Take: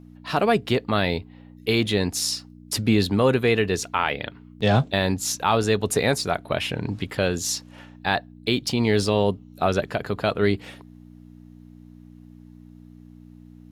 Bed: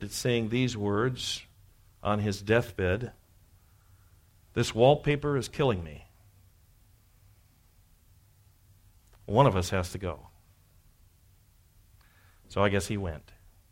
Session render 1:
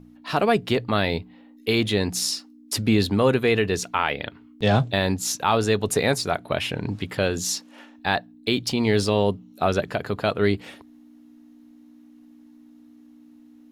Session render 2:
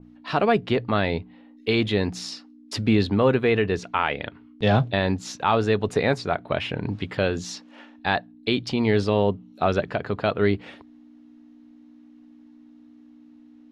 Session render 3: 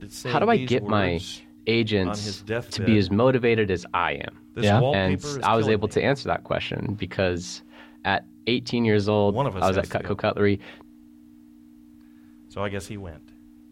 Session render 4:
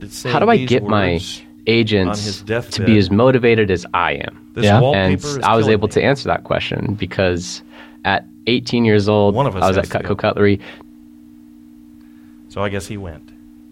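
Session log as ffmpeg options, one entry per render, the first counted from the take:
-af "bandreject=f=60:t=h:w=4,bandreject=f=120:t=h:w=4,bandreject=f=180:t=h:w=4"
-af "lowpass=4500,adynamicequalizer=threshold=0.01:dfrequency=2900:dqfactor=0.7:tfrequency=2900:tqfactor=0.7:attack=5:release=100:ratio=0.375:range=3.5:mode=cutabove:tftype=highshelf"
-filter_complex "[1:a]volume=0.668[s0];[0:a][s0]amix=inputs=2:normalize=0"
-af "volume=2.51,alimiter=limit=0.891:level=0:latency=1"

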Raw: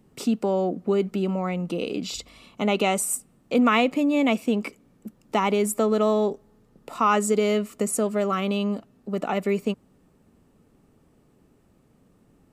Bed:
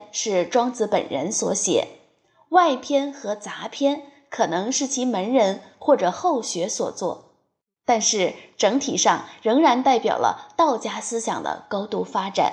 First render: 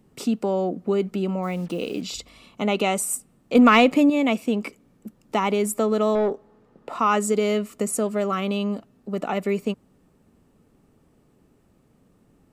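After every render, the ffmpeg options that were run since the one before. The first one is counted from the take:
-filter_complex "[0:a]asplit=3[s0][s1][s2];[s0]afade=t=out:st=1.42:d=0.02[s3];[s1]acrusher=bits=7:mix=0:aa=0.5,afade=t=in:st=1.42:d=0.02,afade=t=out:st=2.01:d=0.02[s4];[s2]afade=t=in:st=2.01:d=0.02[s5];[s3][s4][s5]amix=inputs=3:normalize=0,asettb=1/sr,asplit=3[s6][s7][s8];[s6]atrim=end=3.554[s9];[s7]atrim=start=3.55:end=4.1,asetpts=PTS-STARTPTS,afade=t=in:d=0.004:c=qsin,afade=t=out:st=0.546:d=0.004:c=qsin,acontrast=43[s10];[s8]atrim=start=4.096[s11];[s9][s10]acrossfade=d=0.004:c1=hsin:c2=qsin[s12];[s12][s11]acrossfade=d=0.004:c1=qsin:c2=hsin,asettb=1/sr,asplit=3[s13][s14][s15];[s13]atrim=end=6.154[s16];[s14]atrim=start=6.15:end=6.99,asetpts=PTS-STARTPTS,afade=t=in:d=0.004:c=qsin,afade=t=out:st=0.836:d=0.004:c=qsin,asplit=2[s17][s18];[s18]highpass=f=720:p=1,volume=6.31,asoftclip=type=tanh:threshold=0.224[s19];[s17][s19]amix=inputs=2:normalize=0,lowpass=f=1000:p=1,volume=0.501[s20];[s15]atrim=start=6.986[s21];[s16][s20]acrossfade=d=0.004:c1=hsin:c2=qsin[s22];[s22][s21]acrossfade=d=0.004:c1=qsin:c2=hsin"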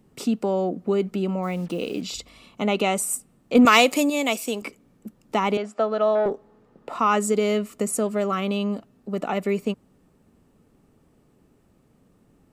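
-filter_complex "[0:a]asettb=1/sr,asplit=3[s0][s1][s2];[s0]atrim=end=3.654[s3];[s1]atrim=start=3.65:end=4.62,asetpts=PTS-STARTPTS,afade=t=in:d=0.004:c=qsin,afade=t=out:st=0.966:d=0.004:c=qsin,bass=f=250:g=-14,treble=f=4000:g=15[s4];[s2]atrim=start=4.616[s5];[s3][s4]acrossfade=d=0.004:c1=hsin:c2=qsin[s6];[s6][s5]acrossfade=d=0.004:c1=qsin:c2=hsin,asettb=1/sr,asplit=3[s7][s8][s9];[s7]atrim=end=5.574[s10];[s8]atrim=start=5.57:end=6.26,asetpts=PTS-STARTPTS,afade=t=in:d=0.004:c=qsin,afade=t=out:st=0.686:d=0.004:c=qsin,highpass=330,equalizer=f=370:t=q:w=4:g=-10,equalizer=f=690:t=q:w=4:g=7,equalizer=f=1000:t=q:w=4:g=-3,equalizer=f=1500:t=q:w=4:g=6,equalizer=f=2200:t=q:w=4:g=-5,equalizer=f=3700:t=q:w=4:g=-4,lowpass=f=4600:w=0.5412,lowpass=f=4600:w=1.3066[s11];[s9]atrim=start=6.256[s12];[s10][s11]acrossfade=d=0.004:c1=hsin:c2=qsin[s13];[s13][s12]acrossfade=d=0.004:c1=qsin:c2=hsin"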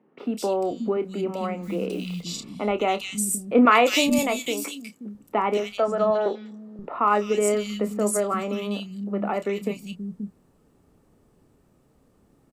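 -filter_complex "[0:a]asplit=2[s0][s1];[s1]adelay=29,volume=0.299[s2];[s0][s2]amix=inputs=2:normalize=0,acrossover=split=210|2500[s3][s4][s5];[s5]adelay=200[s6];[s3]adelay=530[s7];[s7][s4][s6]amix=inputs=3:normalize=0"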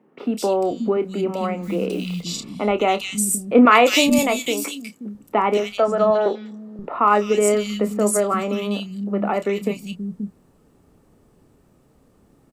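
-af "volume=1.68,alimiter=limit=0.794:level=0:latency=1"

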